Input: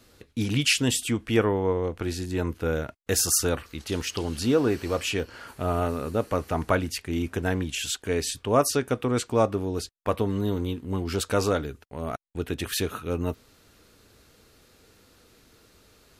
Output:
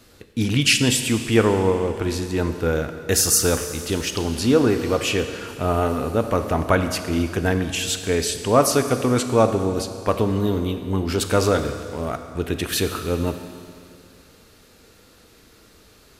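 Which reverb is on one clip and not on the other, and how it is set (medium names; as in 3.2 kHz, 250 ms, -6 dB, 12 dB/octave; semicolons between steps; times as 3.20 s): Schroeder reverb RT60 2.4 s, combs from 28 ms, DRR 8 dB; trim +5 dB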